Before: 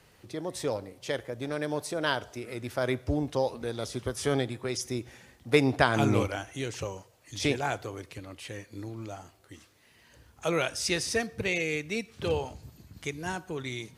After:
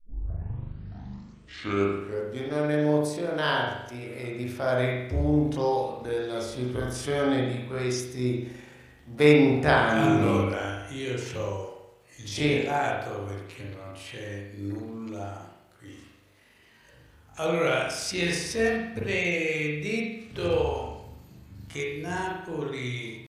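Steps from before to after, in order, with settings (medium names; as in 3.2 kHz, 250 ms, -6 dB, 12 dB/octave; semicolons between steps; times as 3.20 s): tape start-up on the opening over 1.51 s; tempo 0.6×; reverberation RT60 0.80 s, pre-delay 40 ms, DRR -3 dB; trim -1.5 dB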